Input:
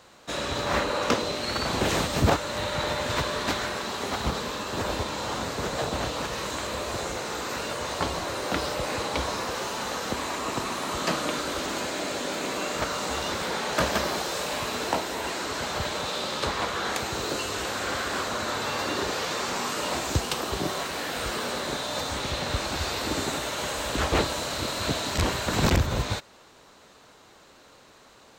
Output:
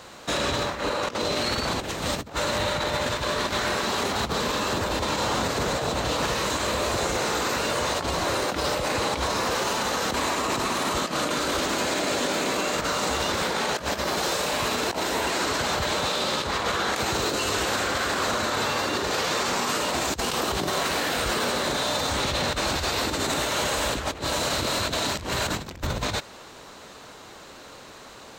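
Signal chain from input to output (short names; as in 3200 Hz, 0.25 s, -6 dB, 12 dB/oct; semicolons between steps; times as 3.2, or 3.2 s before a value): negative-ratio compressor -30 dBFS, ratio -0.5; limiter -24 dBFS, peak gain reduction 8 dB; gain +7.5 dB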